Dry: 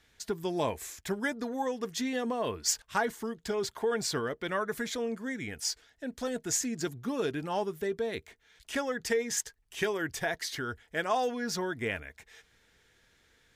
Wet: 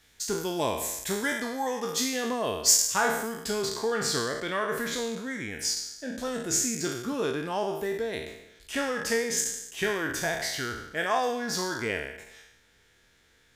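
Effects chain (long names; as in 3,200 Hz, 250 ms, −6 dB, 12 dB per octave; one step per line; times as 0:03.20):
peak hold with a decay on every bin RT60 0.87 s
high-shelf EQ 5,200 Hz +9.5 dB, from 0:03.65 +2 dB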